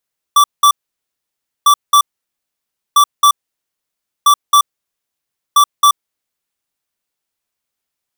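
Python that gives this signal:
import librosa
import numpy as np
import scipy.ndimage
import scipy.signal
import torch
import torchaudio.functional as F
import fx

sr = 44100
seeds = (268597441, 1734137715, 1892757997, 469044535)

y = fx.beep_pattern(sr, wave='square', hz=1160.0, on_s=0.08, off_s=0.19, beeps=2, pause_s=0.95, groups=5, level_db=-7.5)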